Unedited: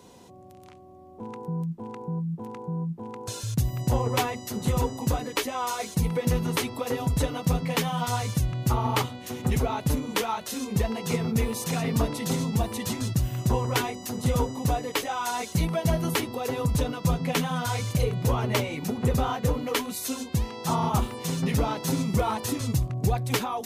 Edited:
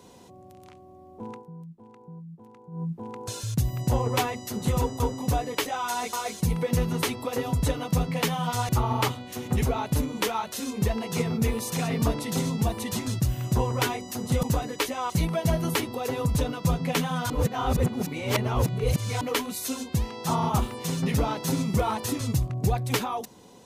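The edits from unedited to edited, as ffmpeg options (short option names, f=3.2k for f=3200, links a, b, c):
-filter_complex "[0:a]asplit=10[a][b][c][d][e][f][g][h][i][j];[a]atrim=end=1.45,asetpts=PTS-STARTPTS,afade=t=out:st=1.31:d=0.14:silence=0.237137[k];[b]atrim=start=1.45:end=2.71,asetpts=PTS-STARTPTS,volume=-12.5dB[l];[c]atrim=start=2.71:end=5.002,asetpts=PTS-STARTPTS,afade=t=in:d=0.14:silence=0.237137[m];[d]atrim=start=14.368:end=15.502[n];[e]atrim=start=5.668:end=8.232[o];[f]atrim=start=8.628:end=14.372[p];[g]atrim=start=4.998:end=5.672[q];[h]atrim=start=15.498:end=17.702[r];[i]atrim=start=17.698:end=19.612,asetpts=PTS-STARTPTS,areverse[s];[j]atrim=start=19.608[t];[k][l][m]concat=n=3:v=0:a=1[u];[u][n]acrossfade=d=0.004:c1=hsin:c2=hsin[v];[v][o]acrossfade=d=0.004:c1=hsin:c2=hsin[w];[w][p]acrossfade=d=0.004:c1=hsin:c2=hsin[x];[x][q]acrossfade=d=0.004:c1=hsin:c2=hsin[y];[y][r]acrossfade=d=0.004:c1=hsin:c2=hsin[z];[z][s]acrossfade=d=0.004:c1=hsin:c2=hsin[aa];[aa][t]acrossfade=d=0.004:c1=hsin:c2=hsin"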